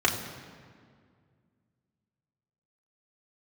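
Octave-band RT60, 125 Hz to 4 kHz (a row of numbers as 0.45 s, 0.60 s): 2.8 s, 2.7 s, 2.1 s, 1.9 s, 1.7 s, 1.3 s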